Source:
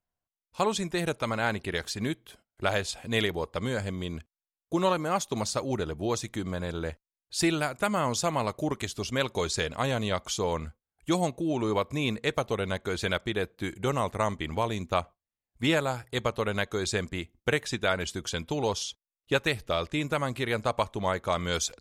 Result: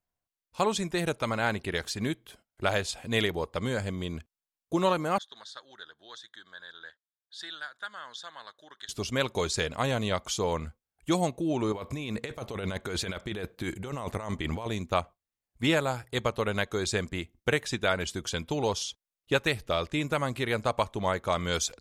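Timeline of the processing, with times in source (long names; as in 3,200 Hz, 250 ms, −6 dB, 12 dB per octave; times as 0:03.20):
0:05.18–0:08.89: pair of resonant band-passes 2,400 Hz, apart 1.1 octaves
0:11.72–0:14.66: compressor whose output falls as the input rises −34 dBFS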